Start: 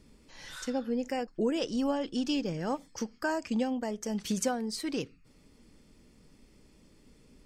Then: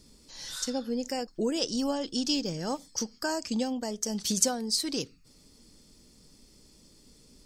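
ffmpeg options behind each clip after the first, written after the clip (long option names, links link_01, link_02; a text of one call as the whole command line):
ffmpeg -i in.wav -af "highshelf=frequency=3300:width_type=q:width=1.5:gain=9" out.wav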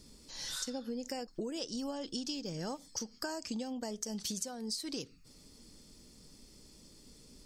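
ffmpeg -i in.wav -af "acompressor=threshold=-35dB:ratio=16" out.wav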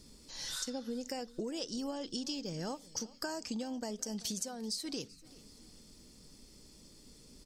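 ffmpeg -i in.wav -af "aecho=1:1:385|770|1155:0.0891|0.041|0.0189" out.wav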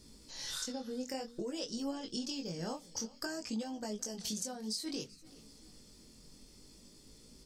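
ffmpeg -i in.wav -af "flanger=delay=18:depth=5.8:speed=0.55,volume=2.5dB" out.wav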